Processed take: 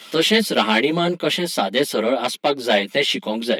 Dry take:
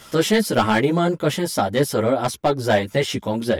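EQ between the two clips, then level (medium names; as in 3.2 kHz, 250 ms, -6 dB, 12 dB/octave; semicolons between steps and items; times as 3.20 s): Chebyshev high-pass 180 Hz, order 4; high-order bell 3 kHz +9.5 dB 1.3 oct; 0.0 dB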